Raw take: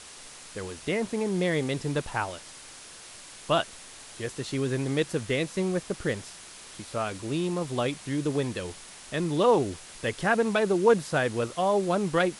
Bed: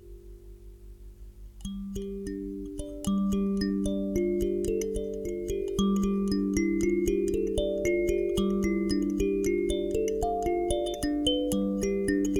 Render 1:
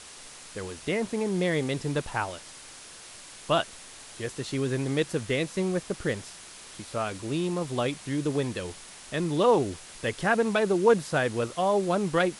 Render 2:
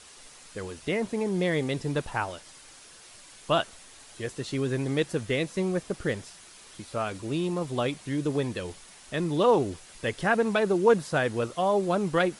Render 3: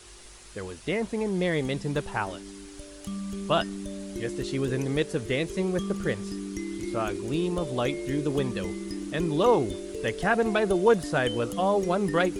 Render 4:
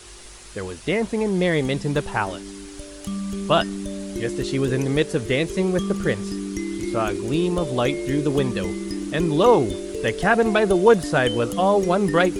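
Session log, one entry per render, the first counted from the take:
no processing that can be heard
broadband denoise 6 dB, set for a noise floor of −47 dBFS
mix in bed −7.5 dB
level +6 dB

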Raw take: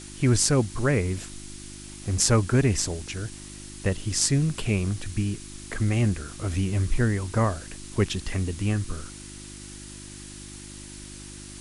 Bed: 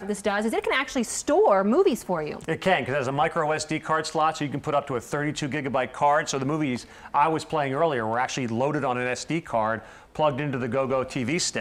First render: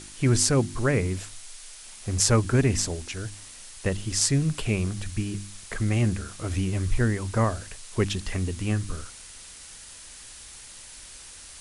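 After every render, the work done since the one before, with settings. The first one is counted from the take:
hum removal 50 Hz, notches 7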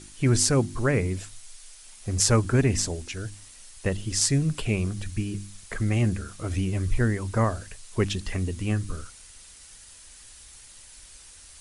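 broadband denoise 6 dB, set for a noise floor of −45 dBFS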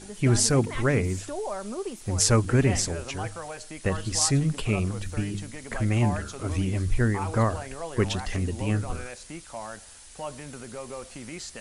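mix in bed −13.5 dB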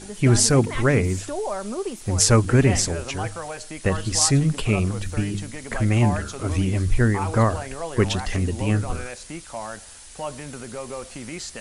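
level +4.5 dB
brickwall limiter −1 dBFS, peak gain reduction 2 dB

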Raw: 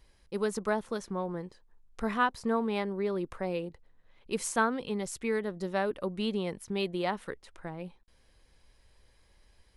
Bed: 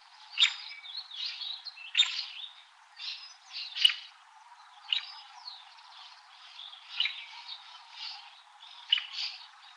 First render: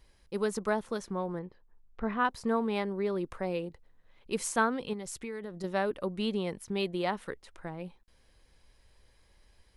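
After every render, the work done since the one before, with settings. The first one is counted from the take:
0:01.39–0:02.25: high-frequency loss of the air 380 metres
0:04.93–0:05.64: downward compressor, threshold −35 dBFS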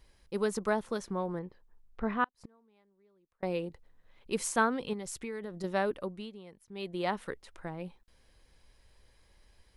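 0:02.24–0:03.43: gate with flip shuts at −33 dBFS, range −36 dB
0:05.89–0:07.11: duck −16.5 dB, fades 0.42 s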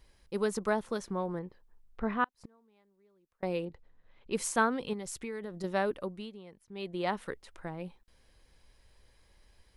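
0:03.65–0:04.35: high-frequency loss of the air 110 metres
0:06.36–0:07.07: high-shelf EQ 7,500 Hz −6.5 dB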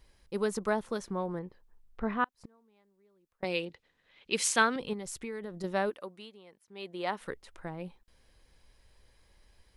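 0:03.44–0:04.76: meter weighting curve D
0:05.89–0:07.20: high-pass filter 740 Hz → 340 Hz 6 dB per octave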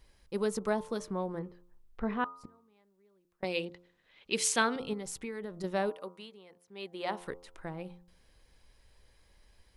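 hum removal 87.97 Hz, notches 16
dynamic equaliser 1,500 Hz, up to −4 dB, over −43 dBFS, Q 1.1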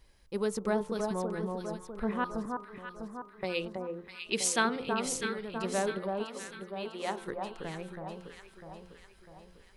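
delay that swaps between a low-pass and a high-pass 325 ms, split 1,300 Hz, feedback 70%, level −3 dB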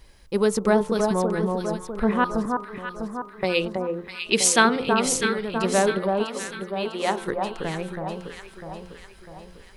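level +10.5 dB

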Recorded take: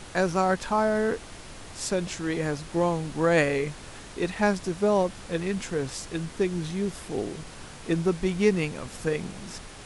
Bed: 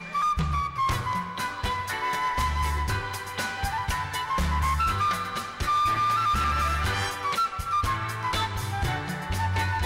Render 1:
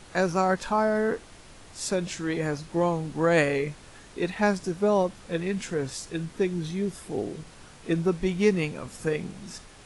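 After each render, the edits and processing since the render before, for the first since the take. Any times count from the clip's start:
noise reduction from a noise print 6 dB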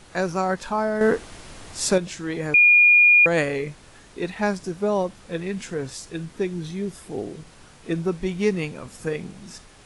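0:01.01–0:01.98: clip gain +7.5 dB
0:02.54–0:03.26: beep over 2,430 Hz −10.5 dBFS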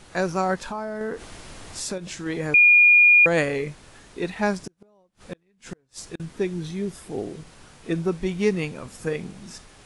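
0:00.61–0:02.26: downward compressor 3 to 1, threshold −29 dBFS
0:04.59–0:06.20: gate with flip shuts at −22 dBFS, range −37 dB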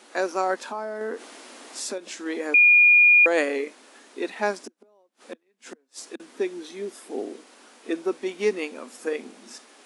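elliptic high-pass filter 240 Hz, stop band 40 dB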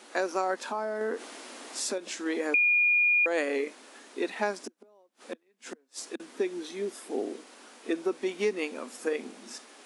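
downward compressor 3 to 1, threshold −25 dBFS, peak gain reduction 8.5 dB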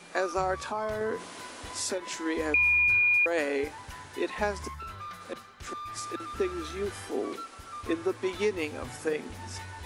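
mix in bed −16 dB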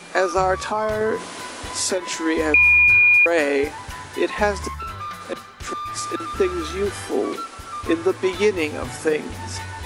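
level +9.5 dB

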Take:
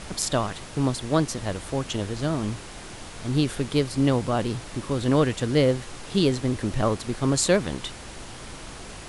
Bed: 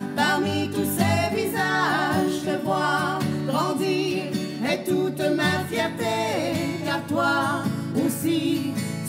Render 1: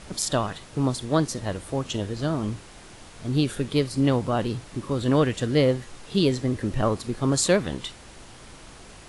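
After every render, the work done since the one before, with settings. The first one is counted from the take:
noise reduction from a noise print 6 dB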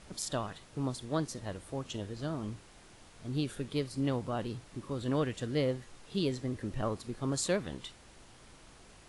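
level −10.5 dB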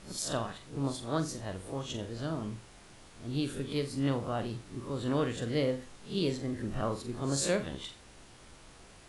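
peak hold with a rise ahead of every peak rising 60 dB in 0.31 s
flutter between parallel walls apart 7.4 metres, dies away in 0.28 s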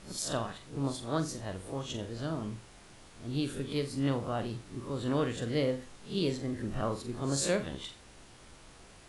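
no processing that can be heard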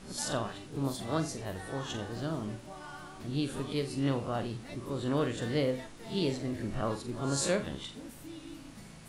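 mix in bed −23.5 dB

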